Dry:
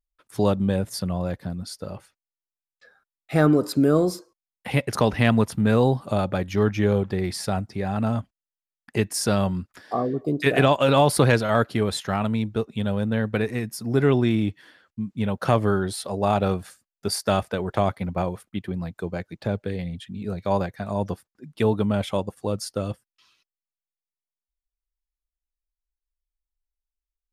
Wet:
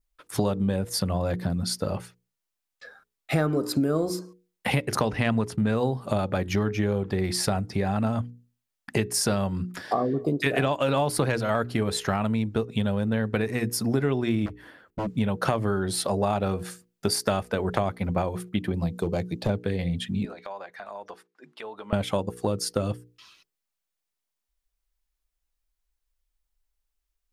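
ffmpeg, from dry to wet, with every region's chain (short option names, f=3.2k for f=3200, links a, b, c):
-filter_complex "[0:a]asettb=1/sr,asplit=3[a][b][c];[a]atrim=end=5.064[d];[b]atrim=start=5.06:end=5.76,asetpts=PTS-STARTPTS,afade=t=in:d=0.004:c=qsin,afade=t=out:st=0.696:d=0.004:c=qsin,lowpass=9.8k,agate=range=-33dB:threshold=-37dB:ratio=3:release=100:detection=peak[e];[c]atrim=start=5.756[f];[d][e]acrossfade=d=0.004:c1=hsin:c2=qsin[g];[g][f]acrossfade=d=0.004:c1=qsin:c2=hsin,asettb=1/sr,asplit=3[h][i][j];[h]atrim=end=14.464[k];[i]atrim=start=14.46:end=15.07,asetpts=PTS-STARTPTS,afade=t=in:d=0.004:c=qsin,afade=t=out:st=0.606:d=0.004:c=qsin,equalizer=f=5k:w=0.44:g=-12.5,aeval=exprs='0.0266*(abs(mod(val(0)/0.0266+3,4)-2)-1)':c=same[l];[j]atrim=start=15.066[m];[k][l]acrossfade=d=0.004:c1=hsin:c2=qsin[n];[n][m]acrossfade=d=0.004:c1=qsin:c2=hsin,asettb=1/sr,asplit=3[o][p][q];[o]atrim=end=18.744[r];[p]atrim=start=18.74:end=19.5,asetpts=PTS-STARTPTS,afade=t=in:d=0.004:c=qsin,afade=t=out:st=0.756:d=0.004:c=qsin,asoftclip=type=hard:threshold=-21.5dB,equalizer=f=1.6k:t=o:w=1:g=-10[s];[q]atrim=start=19.496[t];[r][s]acrossfade=d=0.004:c1=hsin:c2=qsin[u];[u][t]acrossfade=d=0.004:c1=qsin:c2=hsin,asettb=1/sr,asplit=3[v][w][x];[v]atrim=end=20.254[y];[w]atrim=start=20.25:end=21.93,asetpts=PTS-STARTPTS,afade=t=in:d=0.004:c=qsin,afade=t=out:st=1.676:d=0.004:c=qsin,highpass=730,acompressor=threshold=-46dB:ratio=4:attack=3.2:release=140:knee=1:detection=peak,aemphasis=mode=reproduction:type=75fm[z];[x]atrim=start=21.926[aa];[y][z]acrossfade=d=0.004:c1=hsin:c2=qsin[ab];[ab][aa]acrossfade=d=0.004:c1=qsin:c2=hsin,bandreject=f=60:t=h:w=6,bandreject=f=120:t=h:w=6,bandreject=f=180:t=h:w=6,bandreject=f=240:t=h:w=6,bandreject=f=300:t=h:w=6,bandreject=f=360:t=h:w=6,bandreject=f=420:t=h:w=6,bandreject=f=480:t=h:w=6,adynamicequalizer=threshold=0.00316:dfrequency=3500:dqfactor=4.4:tfrequency=3500:tqfactor=4.4:attack=5:release=100:ratio=0.375:range=2:mode=cutabove:tftype=bell,acompressor=threshold=-31dB:ratio=5,volume=8.5dB"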